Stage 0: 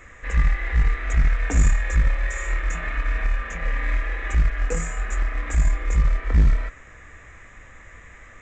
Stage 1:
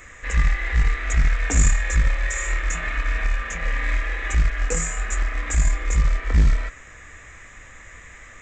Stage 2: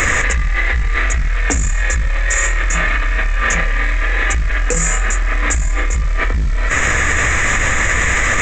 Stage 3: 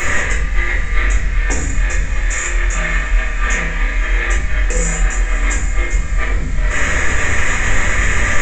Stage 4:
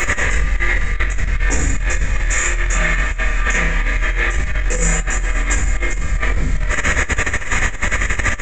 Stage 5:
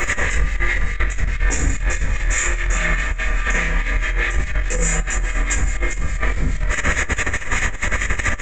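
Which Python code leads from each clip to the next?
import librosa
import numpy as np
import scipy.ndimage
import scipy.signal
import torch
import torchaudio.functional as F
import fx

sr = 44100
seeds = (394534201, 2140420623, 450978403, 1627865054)

y1 = fx.high_shelf(x, sr, hz=3000.0, db=10.5)
y2 = fx.env_flatten(y1, sr, amount_pct=100)
y2 = y2 * 10.0 ** (-3.0 / 20.0)
y3 = fx.echo_diffused(y2, sr, ms=575, feedback_pct=59, wet_db=-14.5)
y3 = fx.room_shoebox(y3, sr, seeds[0], volume_m3=97.0, walls='mixed', distance_m=1.2)
y3 = y3 * 10.0 ** (-7.5 / 20.0)
y4 = fx.over_compress(y3, sr, threshold_db=-15.0, ratio=-0.5)
y4 = y4 + 10.0 ** (-22.5 / 20.0) * np.pad(y4, (int(392 * sr / 1000.0), 0))[:len(y4)]
y5 = fx.harmonic_tremolo(y4, sr, hz=4.8, depth_pct=50, crossover_hz=1800.0)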